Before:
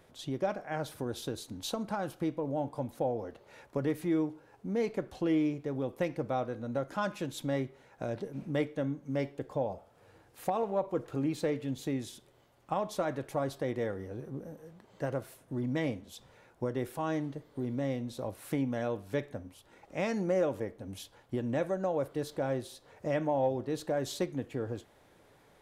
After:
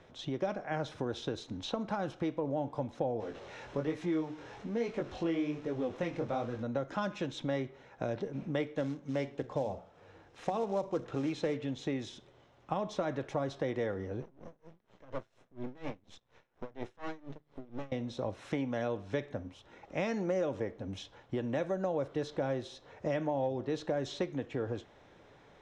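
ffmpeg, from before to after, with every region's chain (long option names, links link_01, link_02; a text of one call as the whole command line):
ffmpeg -i in.wav -filter_complex "[0:a]asettb=1/sr,asplit=3[link_01][link_02][link_03];[link_01]atrim=end=3.204[link_04];[link_02]atrim=start=3.2:end=6.63,asetpts=PTS-STARTPTS,afade=type=in:duration=0.004:curve=qsin,afade=type=out:start_time=3.426:duration=0.004:curve=qsin,aeval=exprs='val(0)+0.5*0.00531*sgn(val(0))':channel_layout=same,flanger=delay=17:depth=7.3:speed=1.2[link_05];[link_03]atrim=start=6.626[link_06];[link_04][link_05]acrossfade=duration=0.004:curve1=hsin:curve2=qsin[link_07];[link_07][link_06]acrossfade=duration=0.004:curve1=qsin:curve2=hsin,asettb=1/sr,asplit=3[link_08][link_09][link_10];[link_08]atrim=end=8.754[link_11];[link_09]atrim=start=8.75:end=11.55,asetpts=PTS-STARTPTS,afade=type=in:duration=0.004:curve=qsin,afade=type=out:start_time=2.796:duration=0.004:curve=qsin,bandreject=frequency=60:width_type=h:width=6,bandreject=frequency=120:width_type=h:width=6,bandreject=frequency=180:width_type=h:width=6,bandreject=frequency=240:width_type=h:width=6,acrusher=bits=6:mode=log:mix=0:aa=0.000001[link_12];[link_10]atrim=start=11.546[link_13];[link_11][link_12]acrossfade=duration=0.004:curve1=hsin:curve2=qsin[link_14];[link_14][link_13]acrossfade=duration=0.004:curve1=qsin:curve2=hsin,asettb=1/sr,asplit=3[link_15][link_16][link_17];[link_15]atrim=end=14.224[link_18];[link_16]atrim=start=14.22:end=17.92,asetpts=PTS-STARTPTS,afade=type=in:duration=0.004:curve=qsin,afade=type=out:start_time=3.696:duration=0.004:curve=qsin,bandreject=frequency=50:width_type=h:width=6,bandreject=frequency=100:width_type=h:width=6,bandreject=frequency=150:width_type=h:width=6,aeval=exprs='max(val(0),0)':channel_layout=same,aeval=exprs='val(0)*pow(10,-22*(0.5-0.5*cos(2*PI*4.2*n/s))/20)':channel_layout=same[link_19];[link_17]atrim=start=17.916[link_20];[link_18][link_19]acrossfade=duration=0.004:curve1=hsin:curve2=qsin[link_21];[link_21][link_20]acrossfade=duration=0.004:curve1=qsin:curve2=hsin,lowpass=frequency=5900:width=0.5412,lowpass=frequency=5900:width=1.3066,acrossover=split=400|3700[link_22][link_23][link_24];[link_22]acompressor=threshold=-39dB:ratio=4[link_25];[link_23]acompressor=threshold=-36dB:ratio=4[link_26];[link_24]acompressor=threshold=-52dB:ratio=4[link_27];[link_25][link_26][link_27]amix=inputs=3:normalize=0,bandreject=frequency=4600:width=7.3,volume=3dB" out.wav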